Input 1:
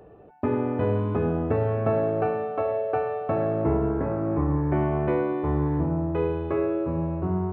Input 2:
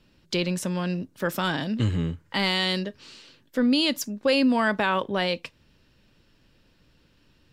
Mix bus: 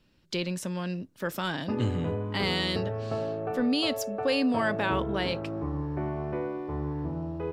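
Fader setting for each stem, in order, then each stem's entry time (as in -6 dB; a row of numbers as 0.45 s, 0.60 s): -8.0 dB, -5.0 dB; 1.25 s, 0.00 s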